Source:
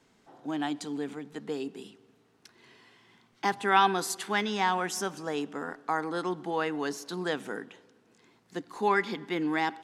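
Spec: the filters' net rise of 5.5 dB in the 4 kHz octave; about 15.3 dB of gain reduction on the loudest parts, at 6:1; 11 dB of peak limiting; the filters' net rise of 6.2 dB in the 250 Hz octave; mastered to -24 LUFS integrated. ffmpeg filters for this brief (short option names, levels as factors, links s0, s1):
-af "equalizer=f=250:t=o:g=8.5,equalizer=f=4000:t=o:g=7,acompressor=threshold=0.0224:ratio=6,volume=5.96,alimiter=limit=0.188:level=0:latency=1"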